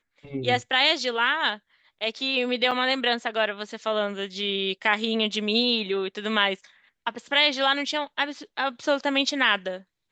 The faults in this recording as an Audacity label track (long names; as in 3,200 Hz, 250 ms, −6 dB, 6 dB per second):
2.710000	2.720000	drop-out 6.3 ms